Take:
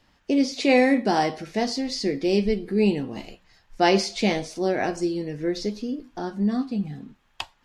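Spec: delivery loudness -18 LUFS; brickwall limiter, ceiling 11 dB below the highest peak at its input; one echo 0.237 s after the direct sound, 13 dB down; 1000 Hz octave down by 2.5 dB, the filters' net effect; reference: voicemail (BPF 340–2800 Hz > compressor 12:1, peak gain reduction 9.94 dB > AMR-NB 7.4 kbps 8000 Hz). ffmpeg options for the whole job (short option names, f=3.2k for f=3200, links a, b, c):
-af "equalizer=f=1k:t=o:g=-3.5,alimiter=limit=-19dB:level=0:latency=1,highpass=340,lowpass=2.8k,aecho=1:1:237:0.224,acompressor=threshold=-34dB:ratio=12,volume=22.5dB" -ar 8000 -c:a libopencore_amrnb -b:a 7400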